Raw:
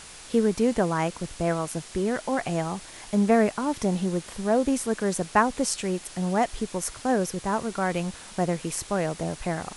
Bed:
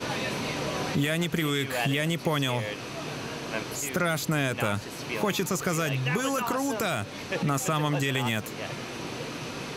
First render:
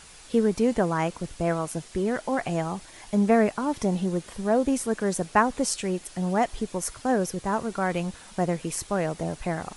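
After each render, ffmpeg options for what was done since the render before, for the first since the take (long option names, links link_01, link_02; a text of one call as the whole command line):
ffmpeg -i in.wav -af "afftdn=noise_reduction=6:noise_floor=-45" out.wav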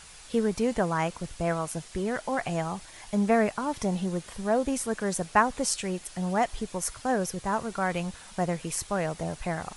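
ffmpeg -i in.wav -af "equalizer=frequency=310:width_type=o:width=1.5:gain=-5.5" out.wav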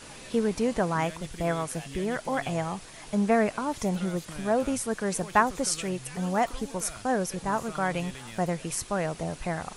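ffmpeg -i in.wav -i bed.wav -filter_complex "[1:a]volume=-16.5dB[link_01];[0:a][link_01]amix=inputs=2:normalize=0" out.wav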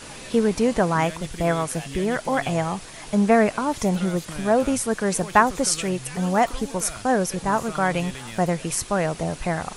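ffmpeg -i in.wav -af "volume=6dB,alimiter=limit=-3dB:level=0:latency=1" out.wav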